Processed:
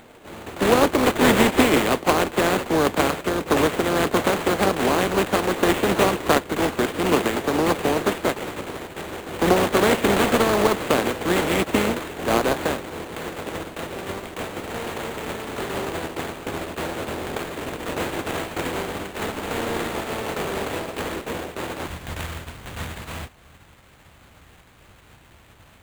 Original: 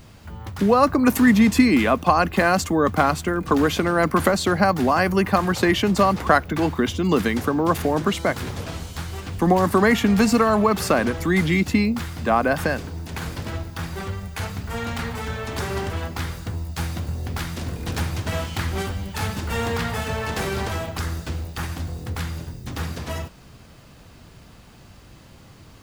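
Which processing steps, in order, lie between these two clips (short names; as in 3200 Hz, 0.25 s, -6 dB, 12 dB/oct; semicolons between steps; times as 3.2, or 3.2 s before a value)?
spectral contrast lowered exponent 0.38; sample-rate reducer 5400 Hz, jitter 20%; bell 390 Hz +11 dB 2 oct, from 21.87 s 68 Hz; gain -6.5 dB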